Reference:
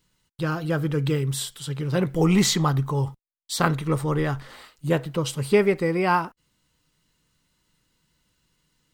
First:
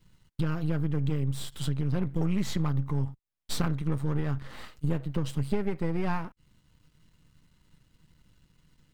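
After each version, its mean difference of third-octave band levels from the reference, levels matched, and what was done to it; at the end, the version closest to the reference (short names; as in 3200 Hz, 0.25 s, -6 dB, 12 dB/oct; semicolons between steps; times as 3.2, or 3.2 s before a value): 5.5 dB: half-wave gain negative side -12 dB; tone controls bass +10 dB, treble -5 dB; compressor 4:1, threshold -31 dBFS, peak gain reduction 18 dB; gain +4.5 dB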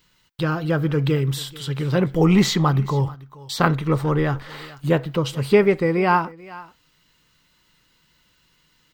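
2.5 dB: bell 9500 Hz -12 dB 1.3 oct; echo 0.437 s -22.5 dB; mismatched tape noise reduction encoder only; gain +3.5 dB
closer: second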